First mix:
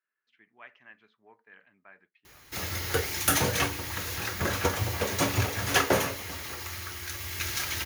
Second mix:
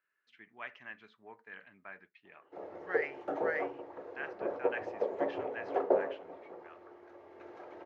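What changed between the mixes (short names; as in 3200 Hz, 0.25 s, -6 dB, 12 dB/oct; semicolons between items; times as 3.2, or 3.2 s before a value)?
speech +5.0 dB; background: add Butterworth band-pass 520 Hz, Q 1.3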